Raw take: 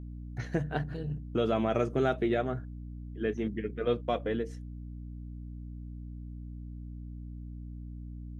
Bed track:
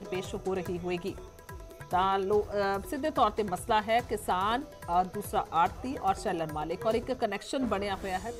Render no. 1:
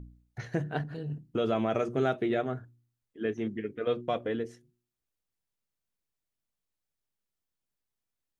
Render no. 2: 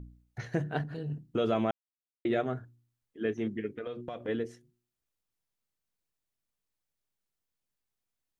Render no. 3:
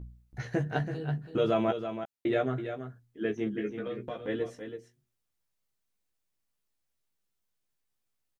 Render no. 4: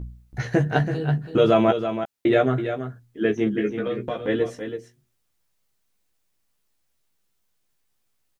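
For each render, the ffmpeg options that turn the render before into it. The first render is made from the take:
-af "bandreject=f=60:t=h:w=4,bandreject=f=120:t=h:w=4,bandreject=f=180:t=h:w=4,bandreject=f=240:t=h:w=4,bandreject=f=300:t=h:w=4,bandreject=f=360:t=h:w=4"
-filter_complex "[0:a]asplit=3[a][b][c];[a]afade=t=out:st=3.74:d=0.02[d];[b]acompressor=threshold=-34dB:ratio=12:attack=3.2:release=140:knee=1:detection=peak,afade=t=in:st=3.74:d=0.02,afade=t=out:st=4.27:d=0.02[e];[c]afade=t=in:st=4.27:d=0.02[f];[d][e][f]amix=inputs=3:normalize=0,asplit=3[g][h][i];[g]atrim=end=1.71,asetpts=PTS-STARTPTS,afade=t=out:st=1.706:d=0.004:c=hsin[j];[h]atrim=start=1.71:end=2.25,asetpts=PTS-STARTPTS,volume=0[k];[i]atrim=start=2.25,asetpts=PTS-STARTPTS,afade=t=in:d=0.004:c=hsin[l];[j][k][l]concat=n=3:v=0:a=1"
-filter_complex "[0:a]asplit=2[a][b];[b]adelay=15,volume=-4dB[c];[a][c]amix=inputs=2:normalize=0,asplit=2[d][e];[e]aecho=0:1:329:0.355[f];[d][f]amix=inputs=2:normalize=0"
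-af "volume=9.5dB"

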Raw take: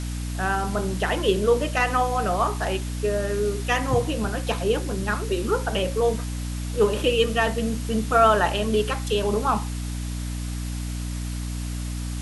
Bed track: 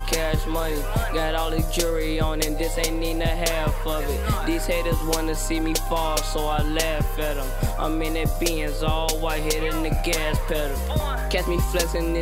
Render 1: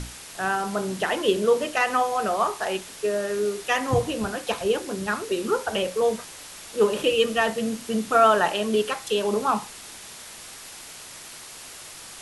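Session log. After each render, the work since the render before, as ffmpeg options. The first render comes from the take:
-af "bandreject=f=60:t=h:w=6,bandreject=f=120:t=h:w=6,bandreject=f=180:t=h:w=6,bandreject=f=240:t=h:w=6,bandreject=f=300:t=h:w=6"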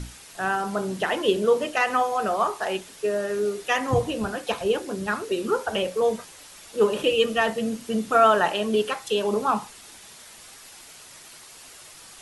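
-af "afftdn=nr=6:nf=-42"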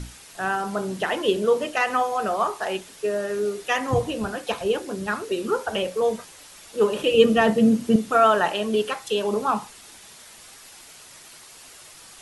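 -filter_complex "[0:a]asettb=1/sr,asplit=3[a][b][c];[a]atrim=end=7.144[d];[b]atrim=start=7.14:end=7.96,asetpts=PTS-STARTPTS,afade=t=in:d=0.004:c=qsin,afade=t=out:st=0.816:d=0.004:c=qsin,equalizer=f=180:w=0.42:g=11.5[e];[c]atrim=start=7.956[f];[d][e]acrossfade=d=0.004:c1=hsin:c2=qsin[g];[g][f]acrossfade=d=0.004:c1=qsin:c2=hsin"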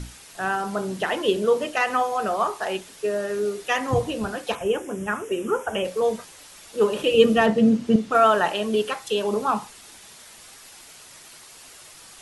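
-filter_complex "[0:a]asettb=1/sr,asplit=3[a][b][c];[a]atrim=end=4.554[d];[b]atrim=start=4.55:end=5.85,asetpts=PTS-STARTPTS,afade=t=in:d=0.004:c=qsin,afade=t=out:st=1.296:d=0.004:c=qsin,asuperstop=centerf=4300:order=4:qfactor=1.6[e];[c]atrim=start=5.846[f];[d][e]acrossfade=d=0.004:c1=hsin:c2=qsin[g];[g][f]acrossfade=d=0.004:c1=qsin:c2=hsin,asettb=1/sr,asplit=3[h][i][j];[h]atrim=end=7.464[k];[i]atrim=start=7.46:end=8.15,asetpts=PTS-STARTPTS,afade=t=in:d=0.004:c=qsin,afade=t=out:st=0.686:d=0.004:c=qsin,adynamicsmooth=sensitivity=3:basefreq=6.5k[l];[j]atrim=start=8.146[m];[k][l]acrossfade=d=0.004:c1=hsin:c2=qsin[n];[n][m]acrossfade=d=0.004:c1=qsin:c2=hsin"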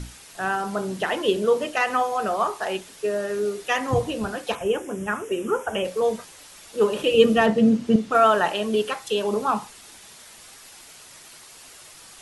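-af anull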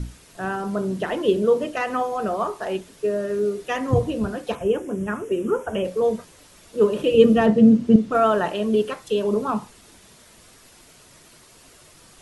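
-af "tiltshelf=f=640:g=6,bandreject=f=810:w=12"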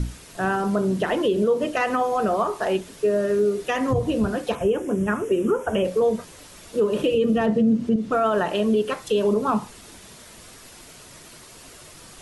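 -filter_complex "[0:a]asplit=2[a][b];[b]acompressor=threshold=-27dB:ratio=6,volume=-1.5dB[c];[a][c]amix=inputs=2:normalize=0,alimiter=limit=-12.5dB:level=0:latency=1:release=109"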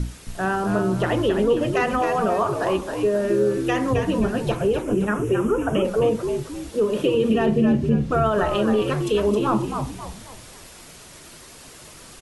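-filter_complex "[0:a]asplit=6[a][b][c][d][e][f];[b]adelay=267,afreqshift=-75,volume=-5.5dB[g];[c]adelay=534,afreqshift=-150,volume=-13.7dB[h];[d]adelay=801,afreqshift=-225,volume=-21.9dB[i];[e]adelay=1068,afreqshift=-300,volume=-30dB[j];[f]adelay=1335,afreqshift=-375,volume=-38.2dB[k];[a][g][h][i][j][k]amix=inputs=6:normalize=0"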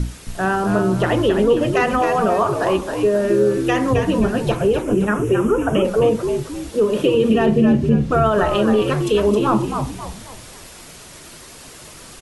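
-af "volume=4dB"

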